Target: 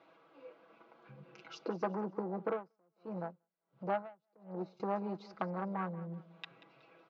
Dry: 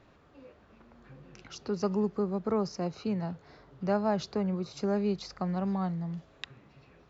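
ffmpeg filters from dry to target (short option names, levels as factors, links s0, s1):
-filter_complex "[0:a]afwtdn=0.0178,bandreject=f=1800:w=8.1,aecho=1:1:6.1:0.71,acompressor=threshold=0.00316:ratio=2,asoftclip=type=tanh:threshold=0.0126,highpass=400,lowpass=3200,aecho=1:1:185|370|555:0.141|0.0523|0.0193,asettb=1/sr,asplit=3[s0][s1][s2];[s0]atrim=end=2.474[s3];[s1]atrim=start=2.47:end=4.8,asetpts=PTS-STARTPTS,afade=t=in:d=0.004:c=qsin,afade=t=out:st=2.326:d=0.004:c=qsin,aeval=exprs='val(0)*pow(10,-38*(0.5-0.5*cos(2*PI*1.4*n/s))/20)':c=same[s4];[s2]atrim=start=4.796[s5];[s3][s4]acrossfade=d=0.004:c1=hsin:c2=qsin[s6];[s6][s5]acrossfade=d=0.004:c1=qsin:c2=hsin,volume=5.62"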